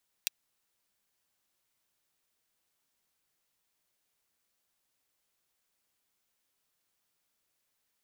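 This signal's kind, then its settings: closed hi-hat, high-pass 2.9 kHz, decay 0.02 s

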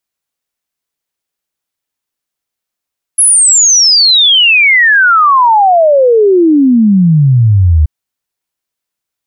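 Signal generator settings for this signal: log sweep 11 kHz -> 73 Hz 4.68 s -3.5 dBFS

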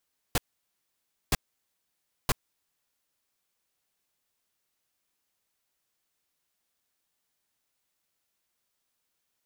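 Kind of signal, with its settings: noise bursts pink, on 0.03 s, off 0.94 s, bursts 3, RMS -23.5 dBFS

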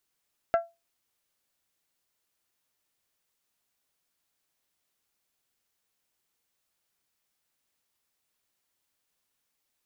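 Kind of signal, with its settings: glass hit bell, lowest mode 675 Hz, decay 0.23 s, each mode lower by 7.5 dB, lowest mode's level -16.5 dB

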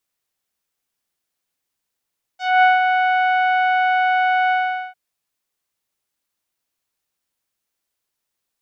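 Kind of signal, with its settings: synth note saw F#5 24 dB/octave, low-pass 2.4 kHz, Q 0.77, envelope 1.5 oct, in 0.13 s, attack 234 ms, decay 0.17 s, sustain -5.5 dB, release 0.43 s, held 2.12 s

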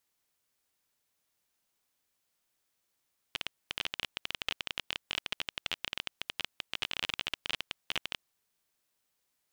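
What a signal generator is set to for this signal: random clicks 21 per s -15 dBFS 4.83 s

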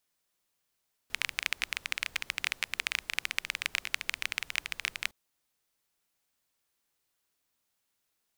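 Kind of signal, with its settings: rain from filtered ticks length 4.01 s, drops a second 17, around 2.3 kHz, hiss -21 dB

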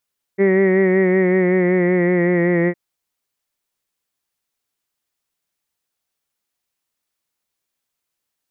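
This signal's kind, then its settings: formant vowel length 2.36 s, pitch 193 Hz, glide -2 st, vibrato depth 0.4 st, F1 430 Hz, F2 1.9 kHz, F3 2.2 kHz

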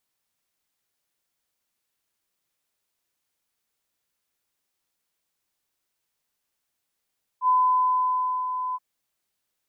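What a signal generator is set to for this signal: ADSR sine 1.01 kHz, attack 70 ms, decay 981 ms, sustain -9.5 dB, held 1.34 s, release 36 ms -16 dBFS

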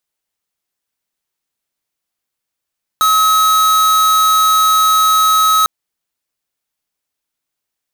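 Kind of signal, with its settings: tone square 1.28 kHz -11 dBFS 2.65 s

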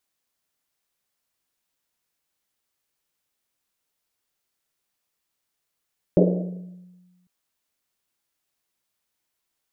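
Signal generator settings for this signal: Risset drum, pitch 180 Hz, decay 1.42 s, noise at 460 Hz, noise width 310 Hz, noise 45%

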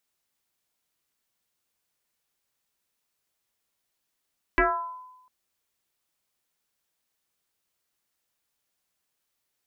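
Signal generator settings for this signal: FM tone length 0.70 s, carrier 1.01 kHz, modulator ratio 0.32, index 3.9, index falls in 0.69 s exponential, decay 0.98 s, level -15.5 dB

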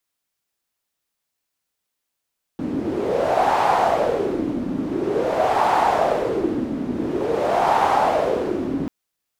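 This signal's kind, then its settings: wind-like swept noise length 6.29 s, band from 260 Hz, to 840 Hz, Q 4.3, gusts 3, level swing 7.5 dB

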